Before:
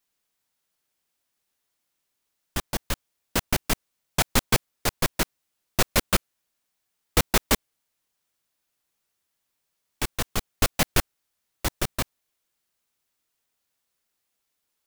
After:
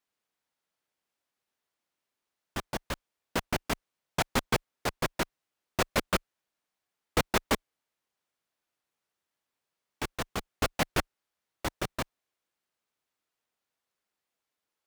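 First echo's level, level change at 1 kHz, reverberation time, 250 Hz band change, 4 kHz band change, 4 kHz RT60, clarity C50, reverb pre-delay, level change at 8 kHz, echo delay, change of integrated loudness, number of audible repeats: no echo, -2.5 dB, no reverb, -4.0 dB, -7.0 dB, no reverb, no reverb, no reverb, -10.5 dB, no echo, -6.0 dB, no echo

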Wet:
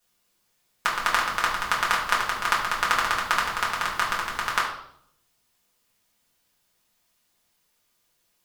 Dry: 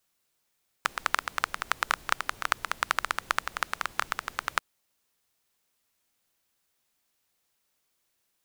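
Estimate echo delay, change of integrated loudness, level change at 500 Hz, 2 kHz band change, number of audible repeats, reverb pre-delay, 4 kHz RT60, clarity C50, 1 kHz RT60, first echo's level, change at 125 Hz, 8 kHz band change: no echo, +6.0 dB, +7.0 dB, +6.0 dB, no echo, 4 ms, 0.60 s, 5.0 dB, 0.60 s, no echo, +8.5 dB, +5.5 dB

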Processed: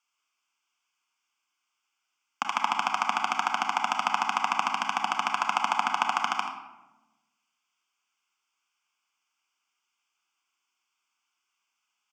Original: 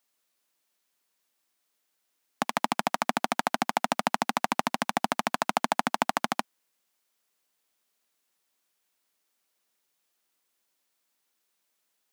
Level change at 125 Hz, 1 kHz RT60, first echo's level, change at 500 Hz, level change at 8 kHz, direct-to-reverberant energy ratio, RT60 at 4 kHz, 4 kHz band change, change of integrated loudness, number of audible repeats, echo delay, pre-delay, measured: under -10 dB, 0.95 s, -11.0 dB, -9.5 dB, -3.0 dB, 3.5 dB, 0.60 s, +1.5 dB, +1.0 dB, 1, 83 ms, 28 ms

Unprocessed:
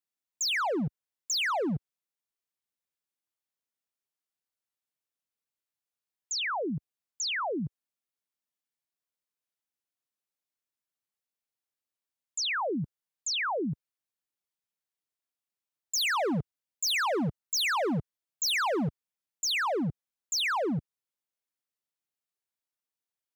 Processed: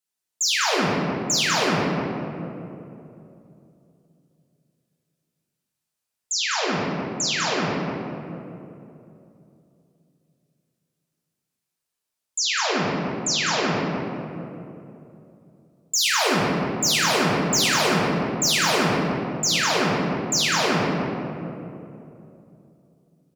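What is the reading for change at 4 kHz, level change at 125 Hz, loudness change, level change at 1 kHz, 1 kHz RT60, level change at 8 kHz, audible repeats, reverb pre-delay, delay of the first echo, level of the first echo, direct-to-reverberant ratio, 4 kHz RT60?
+9.0 dB, +9.0 dB, +7.5 dB, +8.0 dB, 2.5 s, +10.5 dB, 1, 5 ms, 199 ms, -5.5 dB, -6.5 dB, 1.3 s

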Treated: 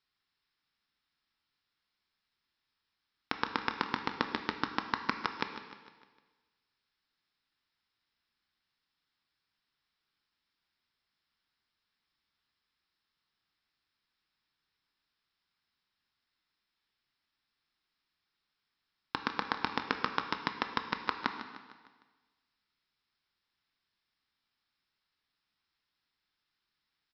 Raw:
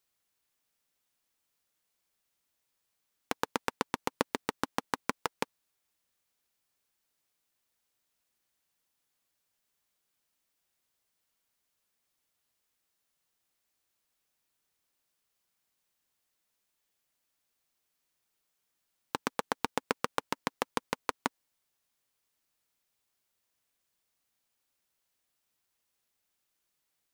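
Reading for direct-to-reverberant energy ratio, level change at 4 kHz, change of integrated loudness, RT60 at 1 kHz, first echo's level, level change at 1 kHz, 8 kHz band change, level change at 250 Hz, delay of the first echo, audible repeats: 5.5 dB, +2.0 dB, +0.5 dB, 1.4 s, -13.0 dB, +0.5 dB, under -15 dB, -0.5 dB, 152 ms, 4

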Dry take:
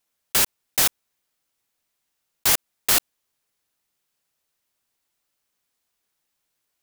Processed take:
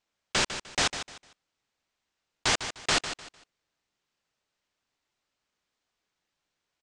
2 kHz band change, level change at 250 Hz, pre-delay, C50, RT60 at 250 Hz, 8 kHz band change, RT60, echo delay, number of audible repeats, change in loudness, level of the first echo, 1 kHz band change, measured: -0.5 dB, +0.5 dB, no reverb, no reverb, no reverb, -8.5 dB, no reverb, 151 ms, 3, -8.0 dB, -10.5 dB, 0.0 dB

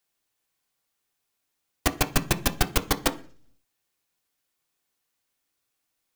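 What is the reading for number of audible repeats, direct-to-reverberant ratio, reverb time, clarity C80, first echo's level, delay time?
no echo, 6.0 dB, 0.45 s, 22.0 dB, no echo, no echo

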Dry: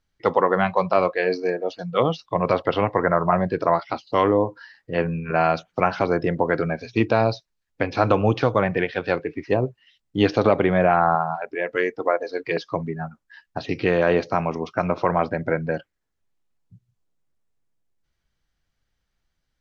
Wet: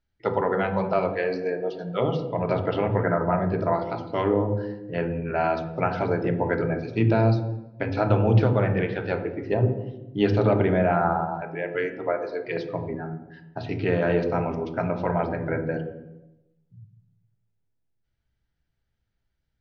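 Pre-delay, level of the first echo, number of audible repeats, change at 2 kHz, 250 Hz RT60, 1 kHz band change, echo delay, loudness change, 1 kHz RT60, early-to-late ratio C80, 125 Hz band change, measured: 3 ms, no echo, no echo, -5.0 dB, 1.1 s, -5.5 dB, no echo, -3.0 dB, 0.85 s, 11.5 dB, +3.0 dB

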